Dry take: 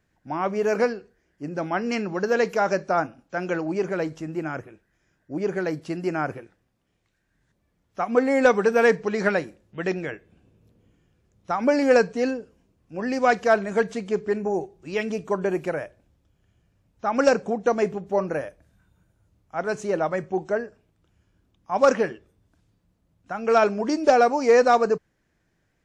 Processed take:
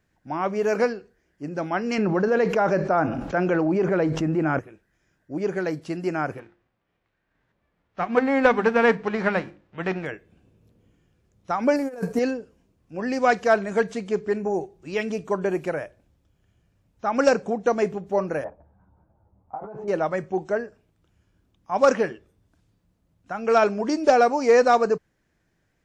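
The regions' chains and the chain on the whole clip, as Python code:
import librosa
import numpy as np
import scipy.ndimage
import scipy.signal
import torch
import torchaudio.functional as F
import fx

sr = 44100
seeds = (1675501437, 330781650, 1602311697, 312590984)

y = fx.chain(x, sr, fx.lowpass(hz=1600.0, slope=6),
    fx.env_flatten(amount_pct=70), at=(1.98, 4.59))
y = fx.envelope_flatten(y, sr, power=0.6, at=(6.38, 10.05), fade=0.02)
y = fx.lowpass(y, sr, hz=2200.0, slope=12, at=(6.38, 10.05), fade=0.02)
y = fx.hum_notches(y, sr, base_hz=50, count=7, at=(6.38, 10.05), fade=0.02)
y = fx.chain(y, sr, fx.cvsd(bps=64000),
    fx.peak_eq(hz=3400.0, db=-11.0, octaves=1.4),
    fx.over_compress(threshold_db=-25.0, ratio=-0.5), at=(11.76, 12.19))
y = fx.chain(y, sr, fx.over_compress(threshold_db=-35.0, ratio=-1.0),
    fx.lowpass_res(hz=850.0, q=3.5),
    fx.ensemble(), at=(18.44, 19.88))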